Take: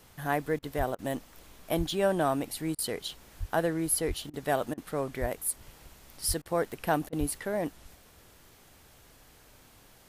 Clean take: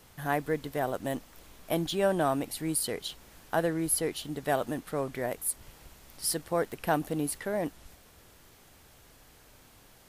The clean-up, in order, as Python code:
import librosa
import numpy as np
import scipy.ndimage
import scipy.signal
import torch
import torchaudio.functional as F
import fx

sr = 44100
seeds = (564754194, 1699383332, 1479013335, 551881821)

y = fx.fix_deplosive(x, sr, at_s=(0.77, 1.77, 3.39, 4.07, 5.2, 6.27, 7.19))
y = fx.fix_interpolate(y, sr, at_s=(0.59, 0.95, 2.75, 4.3, 4.74, 6.42, 7.09), length_ms=35.0)